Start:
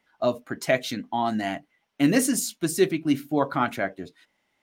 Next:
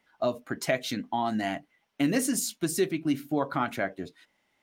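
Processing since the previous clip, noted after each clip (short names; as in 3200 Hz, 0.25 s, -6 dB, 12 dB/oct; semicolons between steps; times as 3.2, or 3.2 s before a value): compressor 2:1, threshold -26 dBFS, peak gain reduction 7 dB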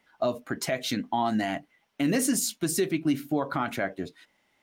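limiter -19 dBFS, peak gain reduction 8.5 dB; gain +3 dB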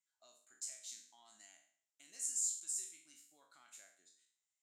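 spectral trails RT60 0.53 s; band-pass 7400 Hz, Q 8.5; gain -2.5 dB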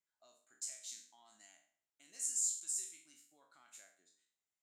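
mismatched tape noise reduction decoder only; gain +1.5 dB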